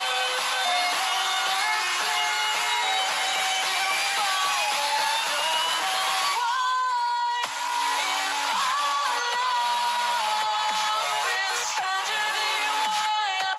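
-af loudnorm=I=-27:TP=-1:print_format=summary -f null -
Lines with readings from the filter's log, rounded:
Input Integrated:    -23.9 LUFS
Input True Peak:     -12.0 dBTP
Input LRA:             1.3 LU
Input Threshold:     -33.9 LUFS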